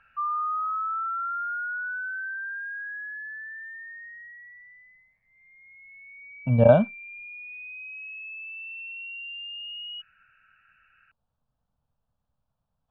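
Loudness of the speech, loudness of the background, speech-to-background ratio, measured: -19.5 LUFS, -33.0 LUFS, 13.5 dB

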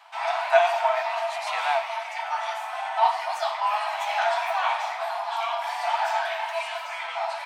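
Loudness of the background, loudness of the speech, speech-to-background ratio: -27.0 LUFS, -29.0 LUFS, -2.0 dB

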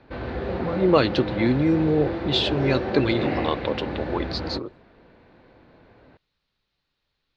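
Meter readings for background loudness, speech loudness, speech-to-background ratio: -29.5 LUFS, -24.0 LUFS, 5.5 dB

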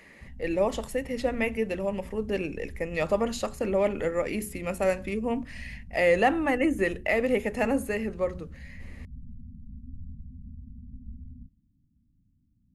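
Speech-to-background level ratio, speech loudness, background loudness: 18.5 dB, -28.0 LUFS, -46.5 LUFS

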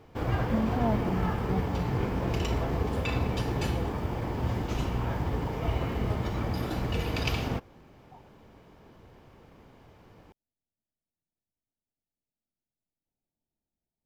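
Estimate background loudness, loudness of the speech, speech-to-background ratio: -31.0 LUFS, -33.0 LUFS, -2.0 dB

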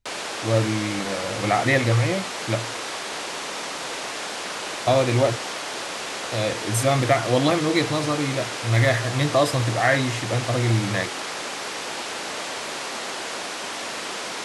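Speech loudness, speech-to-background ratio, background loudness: -23.0 LUFS, 6.5 dB, -29.5 LUFS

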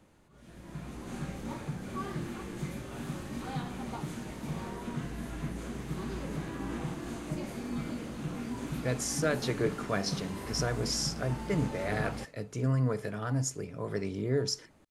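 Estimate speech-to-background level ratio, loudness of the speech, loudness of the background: 5.5 dB, -33.0 LUFS, -38.5 LUFS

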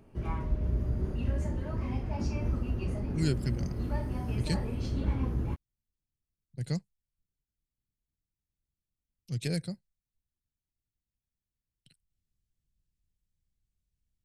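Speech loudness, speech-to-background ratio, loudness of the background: -35.5 LUFS, -1.5 dB, -34.0 LUFS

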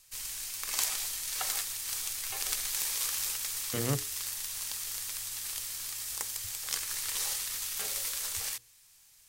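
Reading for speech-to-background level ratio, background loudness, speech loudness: -3.5 dB, -32.5 LUFS, -36.0 LUFS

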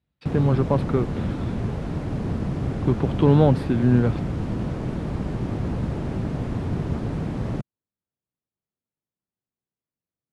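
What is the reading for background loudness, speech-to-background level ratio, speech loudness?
-28.0 LUFS, 6.5 dB, -21.5 LUFS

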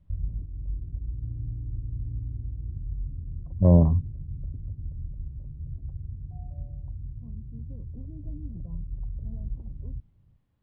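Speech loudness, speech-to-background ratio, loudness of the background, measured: -21.0 LUFS, 16.5 dB, -37.5 LUFS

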